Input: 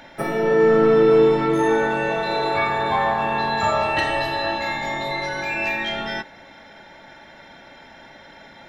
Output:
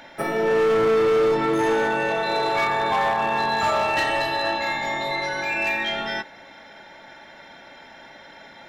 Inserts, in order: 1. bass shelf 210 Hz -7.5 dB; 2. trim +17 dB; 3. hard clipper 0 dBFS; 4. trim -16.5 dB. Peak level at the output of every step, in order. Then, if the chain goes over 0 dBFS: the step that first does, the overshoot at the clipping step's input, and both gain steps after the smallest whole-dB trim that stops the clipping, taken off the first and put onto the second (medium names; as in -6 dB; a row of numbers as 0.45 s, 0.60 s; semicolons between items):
-7.5 dBFS, +9.5 dBFS, 0.0 dBFS, -16.5 dBFS; step 2, 9.5 dB; step 2 +7 dB, step 4 -6.5 dB